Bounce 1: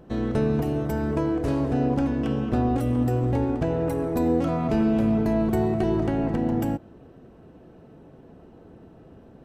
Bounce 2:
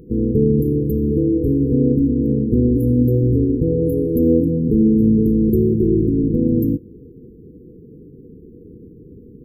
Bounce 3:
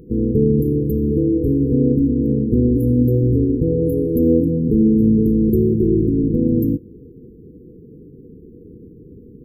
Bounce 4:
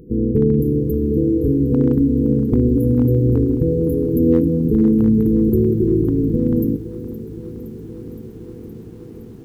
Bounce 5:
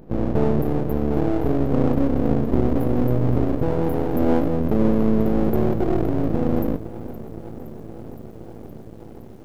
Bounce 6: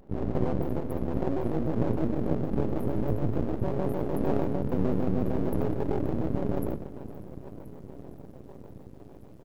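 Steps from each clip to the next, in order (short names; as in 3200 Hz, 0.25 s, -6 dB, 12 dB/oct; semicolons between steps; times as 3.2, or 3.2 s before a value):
FFT band-reject 500–11000 Hz; gain +8 dB
nothing audible
hard clip -7 dBFS, distortion -35 dB; lo-fi delay 0.517 s, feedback 80%, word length 8-bit, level -15 dB
half-wave rectifier
AM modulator 130 Hz, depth 55%; on a send: echo 79 ms -9 dB; on the sum: shaped vibrato square 6.6 Hz, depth 250 cents; gain -6 dB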